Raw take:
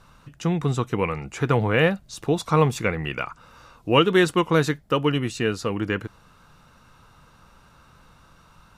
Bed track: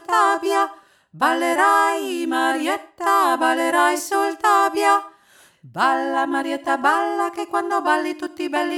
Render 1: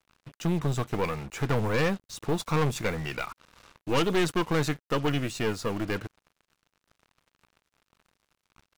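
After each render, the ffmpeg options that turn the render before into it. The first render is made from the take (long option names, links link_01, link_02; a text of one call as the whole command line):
ffmpeg -i in.wav -af "acrusher=bits=6:mix=0:aa=0.5,aeval=exprs='(tanh(11.2*val(0)+0.6)-tanh(0.6))/11.2':channel_layout=same" out.wav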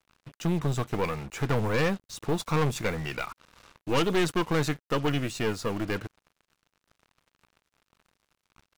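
ffmpeg -i in.wav -af anull out.wav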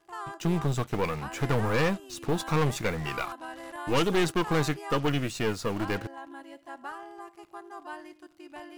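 ffmpeg -i in.wav -i bed.wav -filter_complex "[1:a]volume=-22.5dB[link_01];[0:a][link_01]amix=inputs=2:normalize=0" out.wav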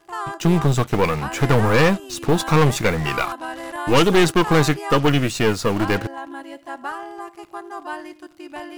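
ffmpeg -i in.wav -af "volume=10dB" out.wav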